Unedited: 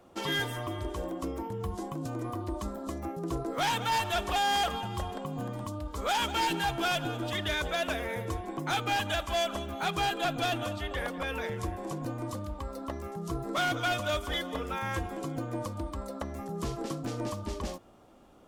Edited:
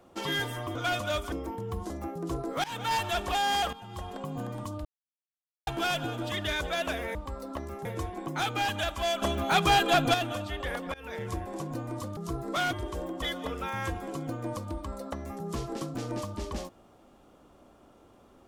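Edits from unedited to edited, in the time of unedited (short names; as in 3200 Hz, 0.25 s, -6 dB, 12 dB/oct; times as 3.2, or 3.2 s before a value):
0.75–1.24 swap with 13.74–14.31
1.82–2.91 cut
3.65–3.98 fade in equal-power, from -22 dB
4.74–5.26 fade in, from -15.5 dB
5.86–6.68 mute
9.53–10.45 gain +7 dB
11.25–11.55 fade in, from -23 dB
12.48–13.18 move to 8.16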